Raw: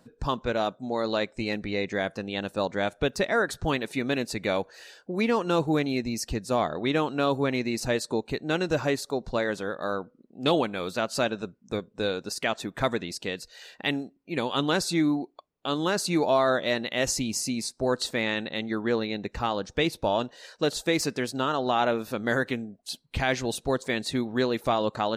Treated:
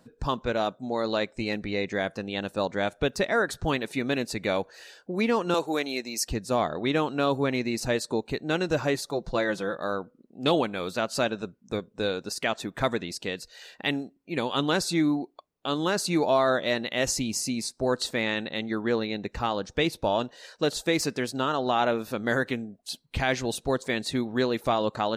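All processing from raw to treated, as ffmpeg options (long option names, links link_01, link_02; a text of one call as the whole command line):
ffmpeg -i in.wav -filter_complex "[0:a]asettb=1/sr,asplit=3[link_01][link_02][link_03];[link_01]atrim=end=5.544[link_04];[link_02]atrim=start=5.54:end=6.28,asetpts=PTS-STARTPTS,afade=type=in:duration=0.004:curve=qsin,afade=type=out:start_time=0.736:duration=0.004:curve=qsin,highpass=380,highshelf=frequency=4000:gain=6.5[link_05];[link_03]atrim=start=6.276[link_06];[link_04][link_05]acrossfade=duration=0.004:curve1=hsin:curve2=qsin[link_07];[link_07][link_06]acrossfade=duration=0.004:curve1=qsin:curve2=hsin,asettb=1/sr,asplit=3[link_08][link_09][link_10];[link_08]atrim=end=8.944[link_11];[link_09]atrim=start=8.94:end=9.77,asetpts=PTS-STARTPTS,afade=type=in:duration=0.004:curve=qsin,afade=type=out:start_time=0.826:duration=0.004:curve=qsin,bandreject=frequency=7700:width=24,aecho=1:1:5.9:0.54,atrim=end_sample=36603[link_12];[link_10]atrim=start=9.766[link_13];[link_11][link_12]acrossfade=duration=0.004:curve1=hsin:curve2=qsin[link_14];[link_14][link_13]acrossfade=duration=0.004:curve1=qsin:curve2=hsin" out.wav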